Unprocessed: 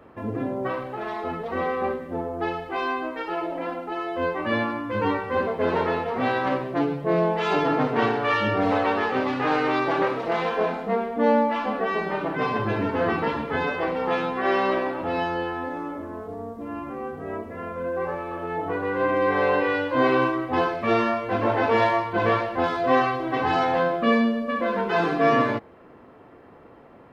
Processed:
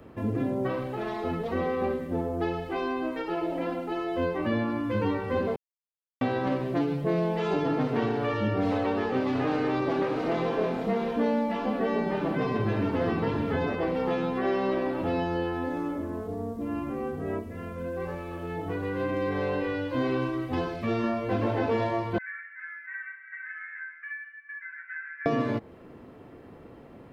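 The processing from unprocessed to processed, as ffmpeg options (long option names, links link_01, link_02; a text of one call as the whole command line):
ffmpeg -i in.wav -filter_complex "[0:a]asettb=1/sr,asplit=3[link_01][link_02][link_03];[link_01]atrim=end=8.734[link_04];[link_02]atrim=start=8.73:end=13.75,asetpts=PTS-STARTPTS,afade=type=in:duration=0.004:curve=qsin,afade=type=out:start_time=5.016:duration=0.004:curve=qsin,aecho=1:1:617:0.376,atrim=end_sample=221382[link_05];[link_03]atrim=start=13.746[link_06];[link_04][link_05]acrossfade=duration=0.004:curve1=hsin:curve2=qsin[link_07];[link_07][link_06]acrossfade=duration=0.004:curve1=qsin:curve2=hsin,asettb=1/sr,asplit=3[link_08][link_09][link_10];[link_08]atrim=end=17.394[link_11];[link_09]atrim=start=17.39:end=21.04,asetpts=PTS-STARTPTS,afade=type=in:duration=0.004:curve=qsin,afade=type=out:start_time=3.646:duration=0.004:curve=qsin,equalizer=frequency=630:width=0.32:gain=-6[link_12];[link_10]atrim=start=21.036[link_13];[link_11][link_12]acrossfade=duration=0.004:curve1=hsin:curve2=qsin[link_14];[link_14][link_13]acrossfade=duration=0.004:curve1=qsin:curve2=hsin,asettb=1/sr,asplit=3[link_15][link_16][link_17];[link_15]atrim=end=22.184[link_18];[link_16]atrim=start=22.18:end=25.26,asetpts=PTS-STARTPTS,afade=type=in:duration=0.004:curve=qsin,afade=type=out:start_time=3.076:duration=0.004:curve=qsin,asuperpass=centerf=1800:order=8:qfactor=2.5[link_19];[link_17]atrim=start=25.256[link_20];[link_18][link_19]acrossfade=duration=0.004:curve1=hsin:curve2=qsin[link_21];[link_21][link_20]acrossfade=duration=0.004:curve1=qsin:curve2=hsin,asplit=3[link_22][link_23][link_24];[link_22]atrim=end=5.56,asetpts=PTS-STARTPTS,afade=type=out:start_time=5.556:duration=0.004:curve=hsin[link_25];[link_23]atrim=start=5.56:end=6.21,asetpts=PTS-STARTPTS,volume=0[link_26];[link_24]atrim=start=6.21,asetpts=PTS-STARTPTS,afade=type=in:duration=0.004:curve=hsin[link_27];[link_25][link_26][link_27]concat=n=3:v=0:a=1,equalizer=frequency=1100:width_type=o:width=2.7:gain=-10,acrossover=split=790|1700[link_28][link_29][link_30];[link_28]acompressor=threshold=-30dB:ratio=4[link_31];[link_29]acompressor=threshold=-43dB:ratio=4[link_32];[link_30]acompressor=threshold=-51dB:ratio=4[link_33];[link_31][link_32][link_33]amix=inputs=3:normalize=0,volume=5.5dB" out.wav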